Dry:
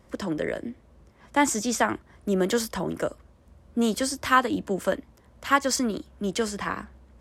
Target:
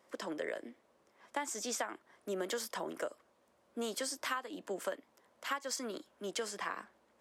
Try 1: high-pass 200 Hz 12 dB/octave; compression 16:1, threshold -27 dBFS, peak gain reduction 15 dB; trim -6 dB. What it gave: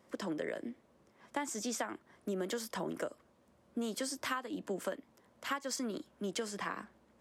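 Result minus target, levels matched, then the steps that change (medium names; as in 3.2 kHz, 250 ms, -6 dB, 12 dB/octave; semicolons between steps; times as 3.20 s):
250 Hz band +5.0 dB
change: high-pass 420 Hz 12 dB/octave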